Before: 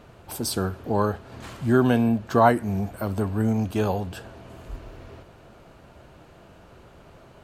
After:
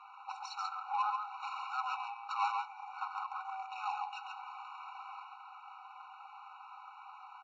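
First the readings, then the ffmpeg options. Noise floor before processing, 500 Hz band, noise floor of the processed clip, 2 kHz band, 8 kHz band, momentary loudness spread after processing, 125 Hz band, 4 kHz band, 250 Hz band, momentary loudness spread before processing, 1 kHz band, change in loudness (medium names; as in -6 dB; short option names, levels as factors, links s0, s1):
-51 dBFS, under -40 dB, -54 dBFS, -11.5 dB, under -20 dB, 16 LU, under -40 dB, -10.5 dB, under -40 dB, 22 LU, -7.0 dB, -16.0 dB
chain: -filter_complex "[0:a]highpass=f=180:w=0.5412,highpass=f=180:w=1.3066,lowshelf=f=390:g=-10,aecho=1:1:3.9:0.68,acrossover=split=310[s0][s1];[s0]alimiter=level_in=2.51:limit=0.0631:level=0:latency=1,volume=0.398[s2];[s2][s1]amix=inputs=2:normalize=0,acompressor=threshold=0.0112:ratio=2,asoftclip=type=tanh:threshold=0.0237,aecho=1:1:137:0.668,adynamicsmooth=sensitivity=5:basefreq=1600,aresample=16000,aresample=44100,afftfilt=real='re*eq(mod(floor(b*sr/1024/740),2),1)':imag='im*eq(mod(floor(b*sr/1024/740),2),1)':win_size=1024:overlap=0.75,volume=2.51"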